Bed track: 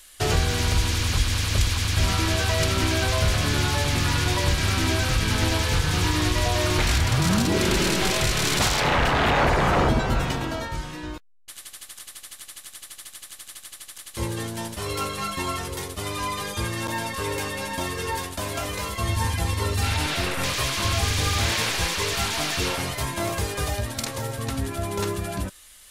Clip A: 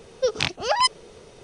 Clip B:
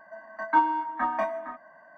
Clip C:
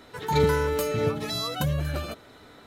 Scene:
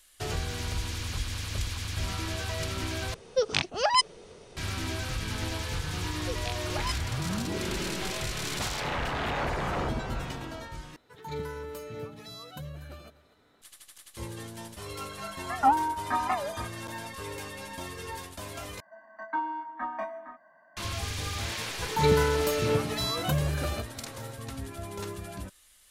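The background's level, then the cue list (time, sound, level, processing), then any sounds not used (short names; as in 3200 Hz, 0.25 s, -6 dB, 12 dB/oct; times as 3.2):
bed track -10.5 dB
3.14 replace with A -3 dB
6.05 add A -15.5 dB
10.96 replace with C -14.5 dB + echo 0.246 s -18 dB
15.11 add B -1 dB + record warp 78 rpm, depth 250 cents
18.8 replace with B -7 dB + limiter -14 dBFS
21.68 add C -1 dB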